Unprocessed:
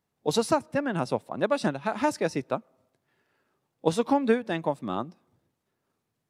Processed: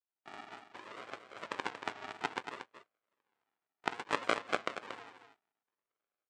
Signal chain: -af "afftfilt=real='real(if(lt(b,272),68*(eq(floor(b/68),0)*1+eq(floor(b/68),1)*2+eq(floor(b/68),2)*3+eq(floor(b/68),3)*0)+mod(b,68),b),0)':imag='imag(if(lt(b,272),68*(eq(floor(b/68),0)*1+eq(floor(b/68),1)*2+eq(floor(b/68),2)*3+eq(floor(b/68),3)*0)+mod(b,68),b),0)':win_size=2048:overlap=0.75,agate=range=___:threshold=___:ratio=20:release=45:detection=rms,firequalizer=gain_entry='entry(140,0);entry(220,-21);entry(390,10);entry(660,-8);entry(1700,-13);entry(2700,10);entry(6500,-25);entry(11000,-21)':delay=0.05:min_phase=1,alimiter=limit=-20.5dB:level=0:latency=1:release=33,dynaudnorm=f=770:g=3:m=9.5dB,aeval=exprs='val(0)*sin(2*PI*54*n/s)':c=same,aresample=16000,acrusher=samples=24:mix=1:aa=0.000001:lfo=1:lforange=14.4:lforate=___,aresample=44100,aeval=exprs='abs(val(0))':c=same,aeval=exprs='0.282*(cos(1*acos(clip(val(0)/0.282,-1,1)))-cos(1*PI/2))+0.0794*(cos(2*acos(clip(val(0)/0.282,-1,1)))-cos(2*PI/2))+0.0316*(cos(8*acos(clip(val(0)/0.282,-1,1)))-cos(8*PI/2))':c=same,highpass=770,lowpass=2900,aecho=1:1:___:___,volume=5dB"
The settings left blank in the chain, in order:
-6dB, -50dB, 0.61, 232, 0.355